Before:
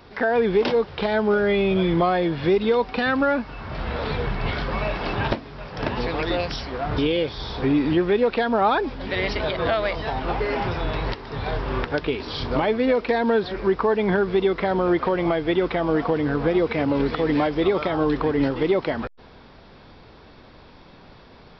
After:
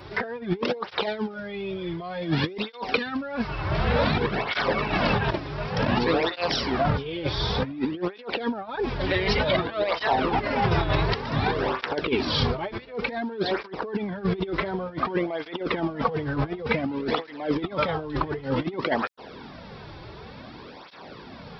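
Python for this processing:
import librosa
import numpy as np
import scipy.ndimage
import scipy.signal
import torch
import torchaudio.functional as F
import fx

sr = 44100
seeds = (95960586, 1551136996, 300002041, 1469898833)

y = fx.high_shelf(x, sr, hz=3400.0, db=8.0, at=(1.01, 3.47))
y = fx.over_compress(y, sr, threshold_db=-26.0, ratio=-0.5)
y = fx.flanger_cancel(y, sr, hz=0.55, depth_ms=4.5)
y = F.gain(torch.from_numpy(y), 4.0).numpy()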